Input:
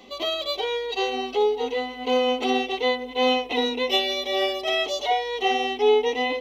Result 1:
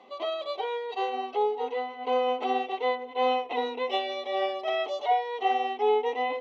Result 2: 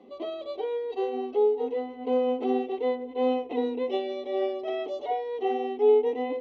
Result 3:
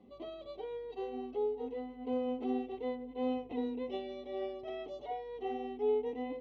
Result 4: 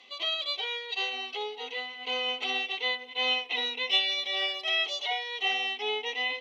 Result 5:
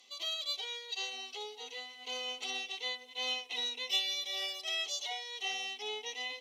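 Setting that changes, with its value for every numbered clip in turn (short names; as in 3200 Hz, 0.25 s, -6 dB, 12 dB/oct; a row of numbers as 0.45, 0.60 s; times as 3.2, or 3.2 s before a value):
band-pass, frequency: 890, 340, 110, 2700, 7300 Hz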